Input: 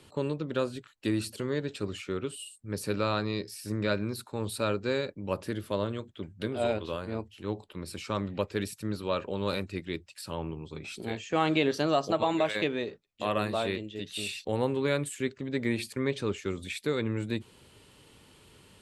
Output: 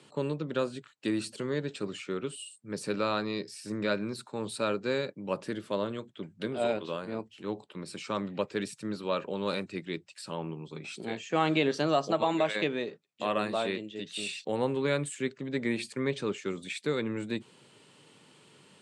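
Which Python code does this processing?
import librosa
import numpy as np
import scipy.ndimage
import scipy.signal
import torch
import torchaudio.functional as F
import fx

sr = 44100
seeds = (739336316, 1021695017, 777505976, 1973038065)

y = scipy.signal.sosfilt(scipy.signal.ellip(3, 1.0, 40, [140.0, 8800.0], 'bandpass', fs=sr, output='sos'), x)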